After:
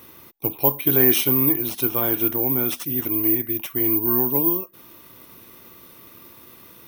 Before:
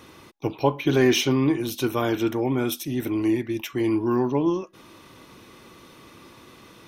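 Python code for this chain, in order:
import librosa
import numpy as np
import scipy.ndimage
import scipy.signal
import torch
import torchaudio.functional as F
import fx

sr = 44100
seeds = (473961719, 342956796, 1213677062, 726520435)

y = (np.kron(x[::3], np.eye(3)[0]) * 3)[:len(x)]
y = y * 10.0 ** (-2.5 / 20.0)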